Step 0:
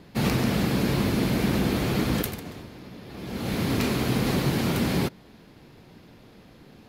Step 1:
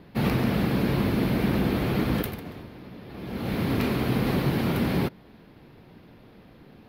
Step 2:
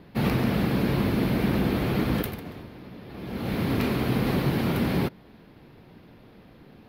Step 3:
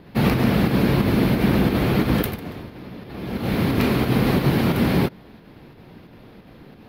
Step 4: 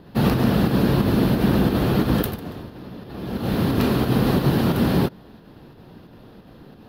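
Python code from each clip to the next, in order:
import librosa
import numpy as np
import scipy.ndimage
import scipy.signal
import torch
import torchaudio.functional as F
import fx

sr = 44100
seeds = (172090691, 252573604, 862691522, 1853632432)

y1 = fx.peak_eq(x, sr, hz=7200.0, db=-14.5, octaves=1.1)
y2 = y1
y3 = fx.volume_shaper(y2, sr, bpm=89, per_beat=2, depth_db=-4, release_ms=60.0, shape='slow start')
y3 = F.gain(torch.from_numpy(y3), 6.0).numpy()
y4 = fx.peak_eq(y3, sr, hz=2200.0, db=-10.0, octaves=0.35)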